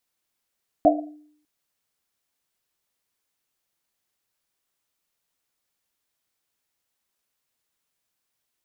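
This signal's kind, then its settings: Risset drum length 0.60 s, pitch 300 Hz, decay 0.68 s, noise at 670 Hz, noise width 120 Hz, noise 55%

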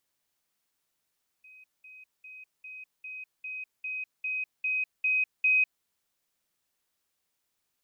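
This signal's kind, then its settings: level ladder 2.52 kHz -50 dBFS, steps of 3 dB, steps 11, 0.20 s 0.20 s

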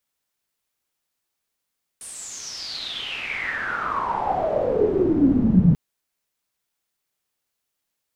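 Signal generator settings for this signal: swept filtered noise white, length 3.74 s lowpass, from 9.6 kHz, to 160 Hz, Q 10, exponential, gain ramp +39 dB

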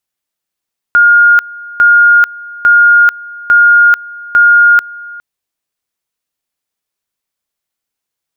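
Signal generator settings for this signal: two-level tone 1.42 kHz -2.5 dBFS, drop 22 dB, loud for 0.44 s, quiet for 0.41 s, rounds 5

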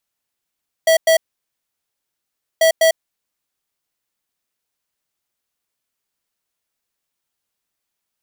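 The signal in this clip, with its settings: beep pattern square 650 Hz, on 0.10 s, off 0.10 s, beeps 2, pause 1.44 s, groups 2, -12 dBFS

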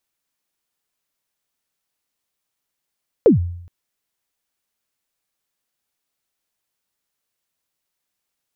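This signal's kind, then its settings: kick drum length 0.42 s, from 530 Hz, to 87 Hz, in 127 ms, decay 0.71 s, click off, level -5 dB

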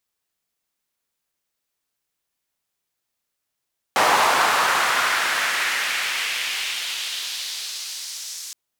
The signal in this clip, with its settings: swept filtered noise white, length 4.57 s bandpass, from 850 Hz, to 6.2 kHz, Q 1.7, exponential, gain ramp -25.5 dB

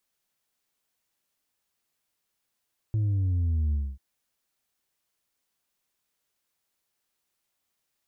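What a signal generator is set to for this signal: sub drop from 110 Hz, over 1.04 s, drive 3 dB, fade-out 0.25 s, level -23 dB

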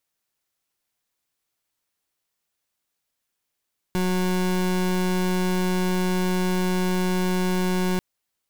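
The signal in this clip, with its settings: pulse 183 Hz, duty 29% -22.5 dBFS 4.04 s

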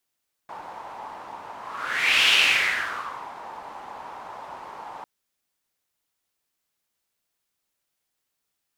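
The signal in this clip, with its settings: whoosh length 4.55 s, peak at 1.79 s, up 0.74 s, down 1.11 s, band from 900 Hz, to 2.8 kHz, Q 4.3, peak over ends 21 dB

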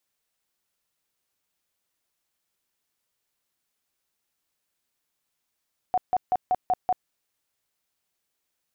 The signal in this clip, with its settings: tone bursts 735 Hz, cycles 27, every 0.19 s, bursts 6, -18.5 dBFS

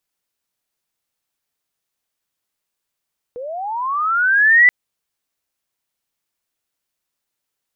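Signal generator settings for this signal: sweep linear 470 Hz -> 2 kHz -26.5 dBFS -> -6 dBFS 1.33 s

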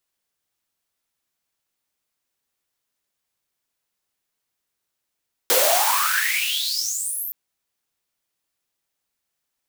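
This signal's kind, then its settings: swept filtered noise white, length 1.82 s highpass, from 440 Hz, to 14 kHz, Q 11, exponential, gain ramp -19.5 dB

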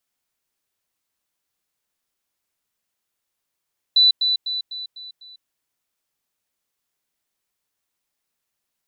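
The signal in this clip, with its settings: level ladder 3.98 kHz -10.5 dBFS, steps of -6 dB, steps 6, 0.15 s 0.10 s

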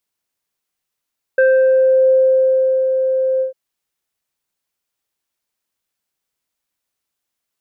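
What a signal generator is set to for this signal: synth note square C5 24 dB/octave, low-pass 720 Hz, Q 2.4, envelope 1 oct, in 0.71 s, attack 4.9 ms, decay 1.49 s, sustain -8 dB, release 0.12 s, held 2.03 s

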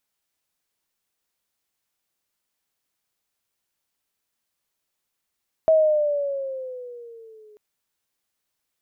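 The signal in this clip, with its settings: gliding synth tone sine, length 1.89 s, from 644 Hz, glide -7.5 st, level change -35 dB, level -12 dB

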